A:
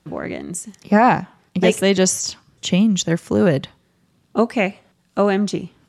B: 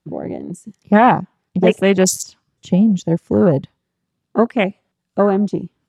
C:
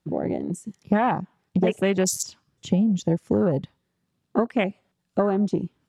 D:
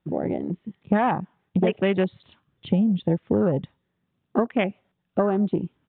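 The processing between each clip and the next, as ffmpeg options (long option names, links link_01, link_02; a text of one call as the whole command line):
ffmpeg -i in.wav -af "afwtdn=0.0631,volume=2.5dB" out.wav
ffmpeg -i in.wav -af "acompressor=threshold=-18dB:ratio=6" out.wav
ffmpeg -i in.wav -af "aresample=8000,aresample=44100" out.wav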